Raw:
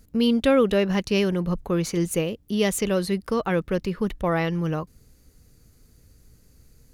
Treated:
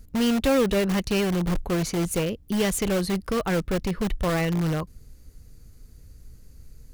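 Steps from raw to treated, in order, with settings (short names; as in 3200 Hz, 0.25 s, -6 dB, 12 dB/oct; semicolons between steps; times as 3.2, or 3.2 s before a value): low shelf 80 Hz +11.5 dB; in parallel at -7.5 dB: wrapped overs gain 18.5 dB; on the sum: gain -3 dB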